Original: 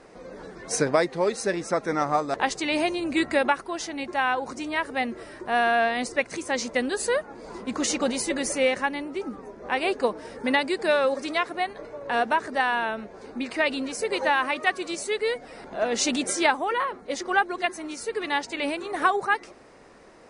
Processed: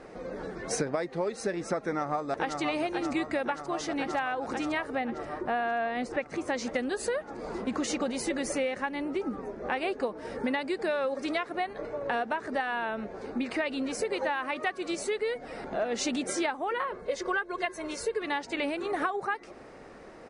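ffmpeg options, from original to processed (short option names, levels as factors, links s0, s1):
-filter_complex "[0:a]asplit=2[s0][s1];[s1]afade=t=in:st=1.79:d=0.01,afade=t=out:st=2.6:d=0.01,aecho=0:1:530|1060|1590|2120|2650|3180|3710|4240|4770|5300|5830|6360:0.473151|0.354863|0.266148|0.199611|0.149708|0.112281|0.0842108|0.0631581|0.0473686|0.0355264|0.0266448|0.0199836[s2];[s0][s2]amix=inputs=2:normalize=0,asettb=1/sr,asplit=3[s3][s4][s5];[s3]atrim=end=4.954[s6];[s4]atrim=start=4.95:end=6.48,asetpts=PTS-STARTPTS,afade=t=in:d=0.004:c=qsin,afade=t=out:st=1.526:d=0.004:c=qsin,highshelf=f=3600:g=-9.5[s7];[s5]atrim=start=6.476[s8];[s6][s7]acrossfade=d=0.004:c1=hsin:c2=qsin[s9];[s9][s8]acrossfade=d=0.004:c1=qsin:c2=hsin,asettb=1/sr,asplit=3[s10][s11][s12];[s10]atrim=end=16.914[s13];[s11]atrim=start=16.91:end=18.22,asetpts=PTS-STARTPTS,afade=t=in:d=0.004:c=qsin,afade=t=out:st=1.306:d=0.004:c=qsin,aecho=1:1:1.9:0.65,atrim=end_sample=57771[s14];[s12]atrim=start=18.216[s15];[s13][s14]acrossfade=d=0.004:c1=hsin:c2=qsin[s16];[s16][s15]acrossfade=d=0.004:c1=qsin:c2=hsin,highshelf=f=3600:g=-8.5,bandreject=f=1000:w=15,acompressor=threshold=0.0282:ratio=6,volume=1.5"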